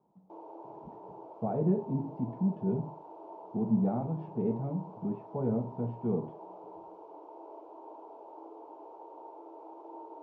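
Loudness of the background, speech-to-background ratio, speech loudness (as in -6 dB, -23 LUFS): -48.5 LUFS, 15.5 dB, -33.0 LUFS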